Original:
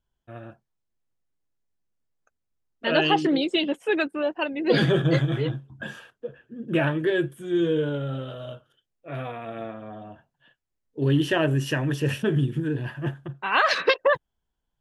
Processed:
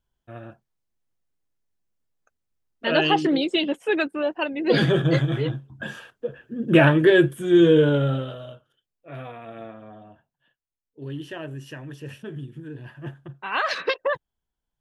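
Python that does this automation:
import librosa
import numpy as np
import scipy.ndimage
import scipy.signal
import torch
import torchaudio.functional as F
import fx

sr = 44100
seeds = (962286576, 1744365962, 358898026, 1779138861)

y = fx.gain(x, sr, db=fx.line((5.71, 1.0), (6.65, 8.0), (8.06, 8.0), (8.53, -4.0), (9.84, -4.0), (10.99, -12.5), (12.53, -12.5), (13.31, -4.0)))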